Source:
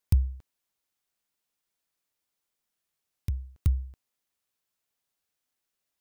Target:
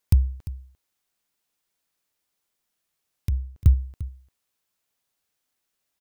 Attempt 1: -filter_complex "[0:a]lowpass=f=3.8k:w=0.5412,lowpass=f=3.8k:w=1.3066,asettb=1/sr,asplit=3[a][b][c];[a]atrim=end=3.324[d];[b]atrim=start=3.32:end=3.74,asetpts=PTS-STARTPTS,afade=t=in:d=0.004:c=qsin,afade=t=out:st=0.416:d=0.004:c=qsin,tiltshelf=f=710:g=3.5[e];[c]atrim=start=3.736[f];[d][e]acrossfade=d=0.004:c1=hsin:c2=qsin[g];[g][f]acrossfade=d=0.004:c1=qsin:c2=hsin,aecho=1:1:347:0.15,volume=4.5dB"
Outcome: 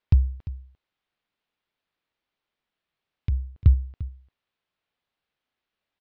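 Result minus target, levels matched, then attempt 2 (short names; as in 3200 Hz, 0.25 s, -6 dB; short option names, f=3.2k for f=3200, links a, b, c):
4000 Hz band -5.0 dB
-filter_complex "[0:a]asettb=1/sr,asplit=3[a][b][c];[a]atrim=end=3.324[d];[b]atrim=start=3.32:end=3.74,asetpts=PTS-STARTPTS,afade=t=in:d=0.004:c=qsin,afade=t=out:st=0.416:d=0.004:c=qsin,tiltshelf=f=710:g=3.5[e];[c]atrim=start=3.736[f];[d][e]acrossfade=d=0.004:c1=hsin:c2=qsin[g];[g][f]acrossfade=d=0.004:c1=qsin:c2=hsin,aecho=1:1:347:0.15,volume=4.5dB"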